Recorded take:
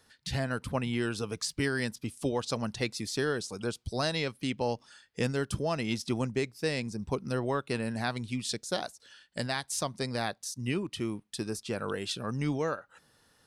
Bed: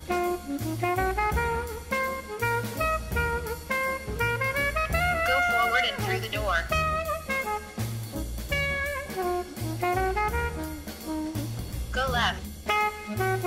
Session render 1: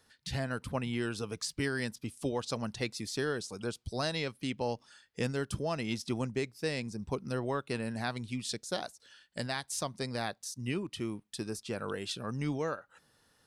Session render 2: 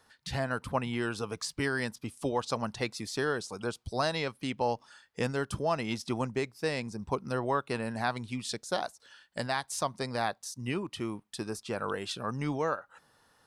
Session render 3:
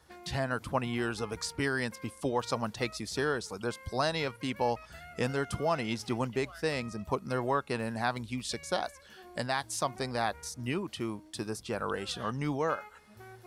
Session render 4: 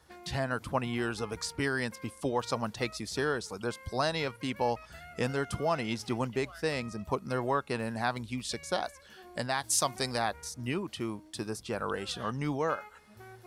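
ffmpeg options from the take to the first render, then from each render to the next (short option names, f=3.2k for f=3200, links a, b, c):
-af "volume=-3dB"
-af "equalizer=f=960:t=o:w=1.5:g=8"
-filter_complex "[1:a]volume=-24dB[a];[0:a][a]amix=inputs=2:normalize=0"
-filter_complex "[0:a]asplit=3[a][b][c];[a]afade=t=out:st=9.63:d=0.02[d];[b]highshelf=f=3k:g=10.5,afade=t=in:st=9.63:d=0.02,afade=t=out:st=10.17:d=0.02[e];[c]afade=t=in:st=10.17:d=0.02[f];[d][e][f]amix=inputs=3:normalize=0"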